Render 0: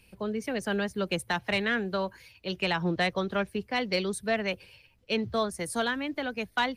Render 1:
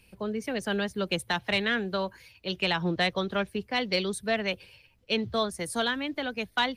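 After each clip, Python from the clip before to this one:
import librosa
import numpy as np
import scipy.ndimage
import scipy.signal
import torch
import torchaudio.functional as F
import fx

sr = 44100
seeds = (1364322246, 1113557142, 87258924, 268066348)

y = fx.dynamic_eq(x, sr, hz=3500.0, q=2.5, threshold_db=-48.0, ratio=4.0, max_db=6)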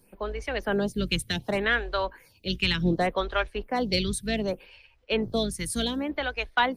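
y = fx.octave_divider(x, sr, octaves=2, level_db=-3.0)
y = fx.stagger_phaser(y, sr, hz=0.67)
y = y * librosa.db_to_amplitude(5.0)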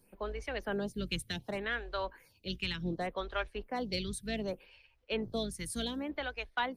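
y = fx.rider(x, sr, range_db=3, speed_s=0.5)
y = y * librosa.db_to_amplitude(-9.0)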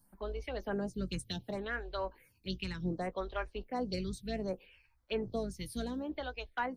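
y = fx.env_phaser(x, sr, low_hz=420.0, high_hz=3500.0, full_db=-31.5)
y = fx.doubler(y, sr, ms=16.0, db=-12.5)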